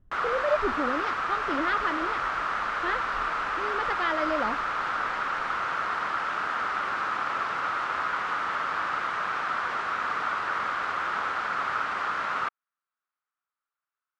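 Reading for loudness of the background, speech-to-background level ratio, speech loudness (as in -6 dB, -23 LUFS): -28.5 LUFS, -3.5 dB, -32.0 LUFS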